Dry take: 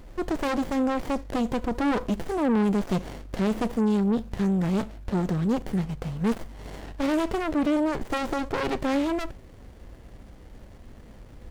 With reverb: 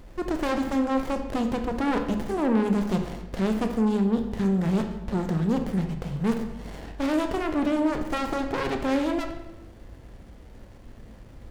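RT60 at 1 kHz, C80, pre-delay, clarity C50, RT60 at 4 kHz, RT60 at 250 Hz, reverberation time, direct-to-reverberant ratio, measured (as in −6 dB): 1.0 s, 10.0 dB, 19 ms, 8.0 dB, 0.80 s, 1.2 s, 1.0 s, 5.5 dB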